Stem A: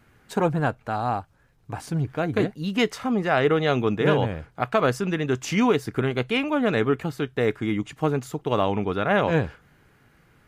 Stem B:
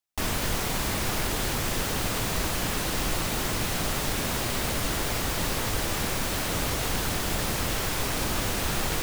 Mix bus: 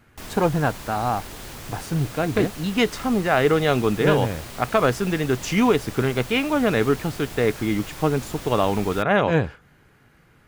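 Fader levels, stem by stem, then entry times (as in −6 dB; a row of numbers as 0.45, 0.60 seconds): +2.0, −9.5 decibels; 0.00, 0.00 seconds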